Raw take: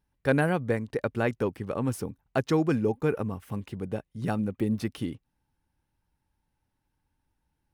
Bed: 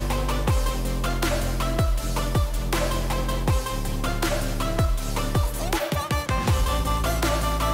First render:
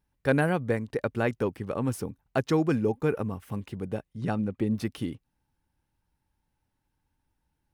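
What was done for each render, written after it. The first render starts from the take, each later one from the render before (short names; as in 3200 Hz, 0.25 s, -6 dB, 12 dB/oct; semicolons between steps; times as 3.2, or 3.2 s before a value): 4.13–4.75 air absorption 51 m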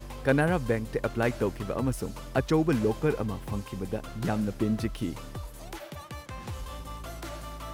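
add bed -16 dB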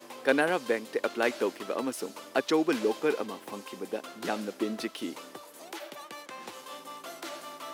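HPF 270 Hz 24 dB/oct; dynamic EQ 3800 Hz, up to +6 dB, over -49 dBFS, Q 0.81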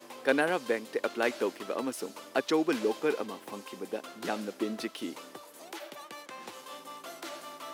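gain -1.5 dB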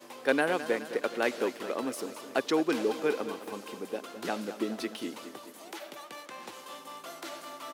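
feedback echo 0.211 s, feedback 58%, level -12.5 dB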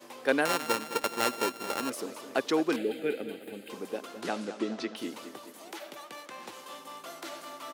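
0.45–1.9 sample sorter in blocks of 32 samples; 2.76–3.7 fixed phaser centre 2500 Hz, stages 4; 4.21–4.95 LPF 12000 Hz -> 5800 Hz 24 dB/oct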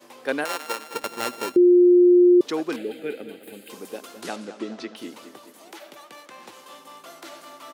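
0.44–0.94 HPF 400 Hz; 1.56–2.41 bleep 355 Hz -10.5 dBFS; 3.43–4.36 high shelf 5000 Hz +9.5 dB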